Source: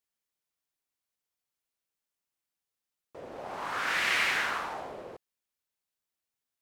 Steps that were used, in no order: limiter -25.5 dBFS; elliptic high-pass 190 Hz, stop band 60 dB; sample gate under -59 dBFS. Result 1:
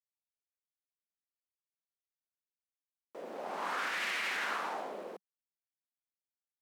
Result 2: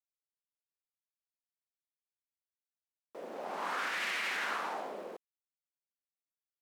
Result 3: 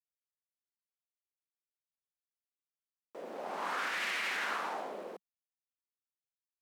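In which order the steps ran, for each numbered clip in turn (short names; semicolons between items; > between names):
limiter > sample gate > elliptic high-pass; limiter > elliptic high-pass > sample gate; sample gate > limiter > elliptic high-pass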